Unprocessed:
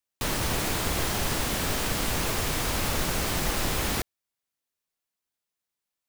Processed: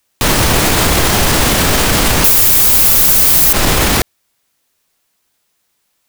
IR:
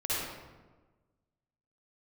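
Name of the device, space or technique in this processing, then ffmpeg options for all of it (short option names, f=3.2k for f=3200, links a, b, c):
loud club master: -filter_complex "[0:a]asettb=1/sr,asplit=3[a][b][c];[a]atrim=end=2.244[d];[b]atrim=start=2.24:end=3.53,asetpts=PTS-STARTPTS,afade=t=in:d=0.004:c=qsin,afade=t=out:st=1.286:d=0.004:c=qsin,aemphasis=mode=production:type=75fm[e];[c]atrim=start=3.526[f];[d][e]acrossfade=d=0.004:c1=hsin:c2=qsin[g];[g][f]acrossfade=d=0.004:c1=qsin:c2=hsin,acompressor=threshold=-21dB:ratio=2.5,asoftclip=type=hard:threshold=-15.5dB,alimiter=level_in=23.5dB:limit=-1dB:release=50:level=0:latency=1,volume=-1dB"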